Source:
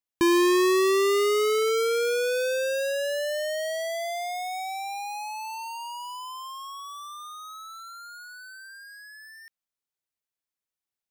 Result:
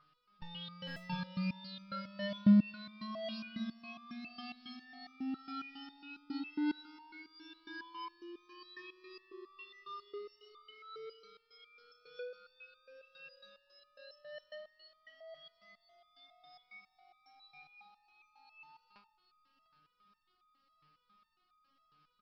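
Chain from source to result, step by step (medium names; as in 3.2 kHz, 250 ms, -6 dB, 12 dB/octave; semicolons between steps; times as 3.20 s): spectral levelling over time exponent 0.6; peaking EQ 1.1 kHz -8 dB 2.5 oct; whistle 2.5 kHz -46 dBFS; speed mistake 15 ips tape played at 7.5 ips; Chebyshev low-pass 5.3 kHz, order 8; bass shelf 320 Hz +6 dB; band-stop 2 kHz, Q 20; doubling 14 ms -11 dB; delay 700 ms -13.5 dB; buffer glitch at 0.86 s, samples 512, times 8; resonator arpeggio 7.3 Hz 150–1200 Hz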